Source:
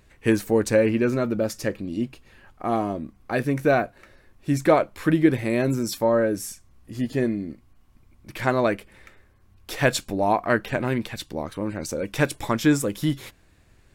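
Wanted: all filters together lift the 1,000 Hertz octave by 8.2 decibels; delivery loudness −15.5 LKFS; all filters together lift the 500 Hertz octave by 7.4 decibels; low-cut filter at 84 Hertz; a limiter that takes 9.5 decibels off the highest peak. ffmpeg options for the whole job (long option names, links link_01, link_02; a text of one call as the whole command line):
ffmpeg -i in.wav -af "highpass=84,equalizer=frequency=500:width_type=o:gain=6.5,equalizer=frequency=1000:width_type=o:gain=8.5,volume=6dB,alimiter=limit=-1.5dB:level=0:latency=1" out.wav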